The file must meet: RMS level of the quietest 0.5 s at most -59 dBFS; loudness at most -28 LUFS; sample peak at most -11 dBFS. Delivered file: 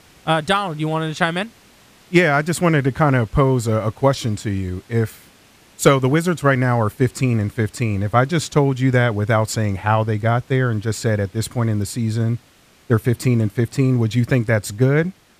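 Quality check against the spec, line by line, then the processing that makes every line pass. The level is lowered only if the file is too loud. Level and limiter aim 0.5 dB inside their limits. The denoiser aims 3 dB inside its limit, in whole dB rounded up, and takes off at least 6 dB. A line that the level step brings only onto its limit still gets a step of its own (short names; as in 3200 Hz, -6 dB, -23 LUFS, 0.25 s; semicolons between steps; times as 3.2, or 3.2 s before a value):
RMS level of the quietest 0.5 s -52 dBFS: fail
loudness -19.0 LUFS: fail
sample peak -2.5 dBFS: fail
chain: gain -9.5 dB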